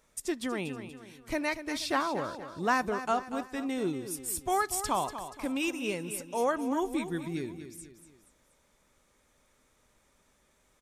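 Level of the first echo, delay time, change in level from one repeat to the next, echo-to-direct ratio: -11.0 dB, 0.239 s, -7.0 dB, -10.0 dB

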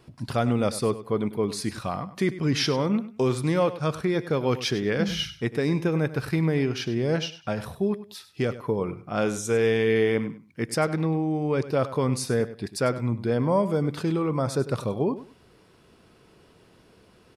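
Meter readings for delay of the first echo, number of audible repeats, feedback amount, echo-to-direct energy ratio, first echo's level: 99 ms, 2, 23%, -14.5 dB, -14.5 dB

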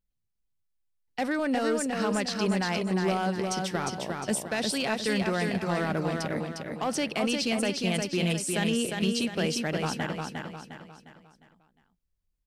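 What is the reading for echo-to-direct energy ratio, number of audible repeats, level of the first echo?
-3.0 dB, 5, -4.0 dB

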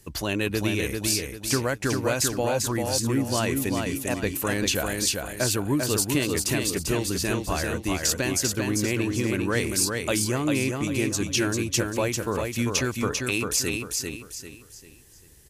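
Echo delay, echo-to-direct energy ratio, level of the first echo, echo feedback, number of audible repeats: 0.395 s, -3.5 dB, -4.0 dB, 35%, 4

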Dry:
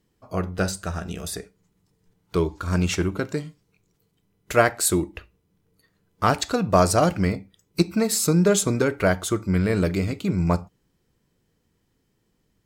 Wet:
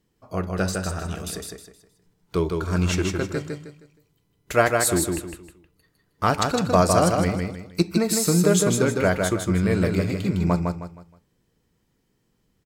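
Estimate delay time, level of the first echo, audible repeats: 0.157 s, -4.0 dB, 4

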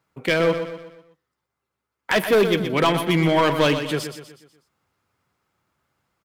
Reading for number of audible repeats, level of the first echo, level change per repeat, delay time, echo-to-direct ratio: 4, -9.0 dB, -7.0 dB, 0.123 s, -8.0 dB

